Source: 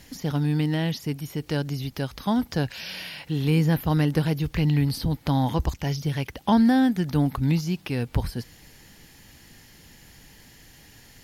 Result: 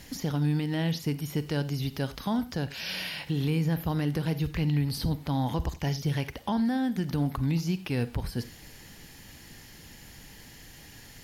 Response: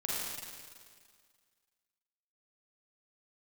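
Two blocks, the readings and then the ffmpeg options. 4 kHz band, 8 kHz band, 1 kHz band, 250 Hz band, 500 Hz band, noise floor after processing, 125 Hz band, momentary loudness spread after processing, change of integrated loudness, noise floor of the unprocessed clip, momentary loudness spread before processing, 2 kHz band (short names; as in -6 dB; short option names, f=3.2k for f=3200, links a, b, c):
-2.0 dB, -1.5 dB, -6.0 dB, -5.5 dB, -4.5 dB, -50 dBFS, -4.0 dB, 20 LU, -5.0 dB, -52 dBFS, 10 LU, -3.5 dB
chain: -filter_complex "[0:a]alimiter=limit=-21.5dB:level=0:latency=1:release=289,asplit=2[a][b];[1:a]atrim=start_sample=2205,afade=t=out:st=0.15:d=0.01,atrim=end_sample=7056[c];[b][c]afir=irnorm=-1:irlink=0,volume=-12.5dB[d];[a][d]amix=inputs=2:normalize=0"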